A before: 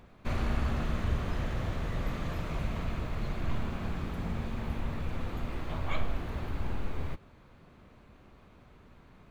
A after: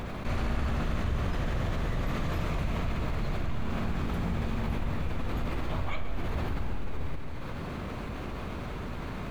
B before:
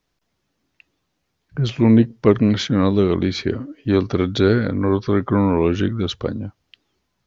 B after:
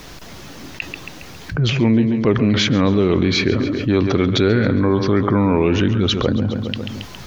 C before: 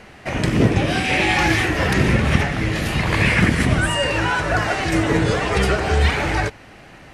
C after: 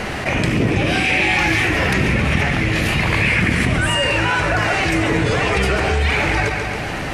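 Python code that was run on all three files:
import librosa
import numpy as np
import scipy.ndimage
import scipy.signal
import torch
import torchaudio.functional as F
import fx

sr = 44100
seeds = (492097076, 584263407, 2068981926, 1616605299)

y = fx.dynamic_eq(x, sr, hz=2400.0, q=2.9, threshold_db=-40.0, ratio=4.0, max_db=6)
y = fx.echo_feedback(y, sr, ms=137, feedback_pct=43, wet_db=-14.0)
y = fx.env_flatten(y, sr, amount_pct=70)
y = y * 10.0 ** (-4.0 / 20.0)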